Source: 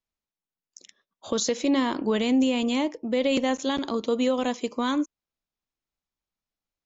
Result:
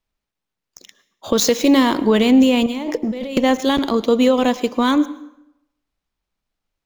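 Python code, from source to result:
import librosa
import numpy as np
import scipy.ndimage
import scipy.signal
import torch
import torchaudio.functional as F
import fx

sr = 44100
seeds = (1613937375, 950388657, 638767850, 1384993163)

y = scipy.ndimage.median_filter(x, 5, mode='constant')
y = fx.high_shelf(y, sr, hz=5700.0, db=8.0, at=(1.39, 2.0))
y = fx.over_compress(y, sr, threshold_db=-34.0, ratio=-1.0, at=(2.66, 3.37))
y = fx.low_shelf(y, sr, hz=69.0, db=7.5)
y = fx.rev_plate(y, sr, seeds[0], rt60_s=0.83, hf_ratio=0.75, predelay_ms=95, drr_db=17.5)
y = y * 10.0 ** (9.0 / 20.0)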